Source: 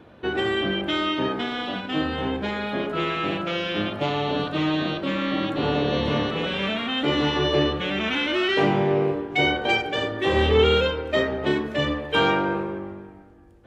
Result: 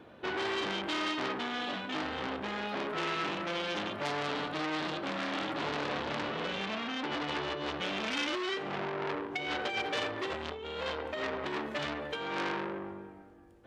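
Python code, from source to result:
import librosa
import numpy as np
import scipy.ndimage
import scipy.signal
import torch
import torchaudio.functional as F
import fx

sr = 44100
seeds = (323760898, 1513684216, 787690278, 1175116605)

y = fx.low_shelf(x, sr, hz=140.0, db=-9.5)
y = fx.over_compress(y, sr, threshold_db=-24.0, ratio=-0.5)
y = fx.gaussian_blur(y, sr, sigma=1.8, at=(5.88, 7.57))
y = fx.transformer_sat(y, sr, knee_hz=3400.0)
y = y * 10.0 ** (-4.0 / 20.0)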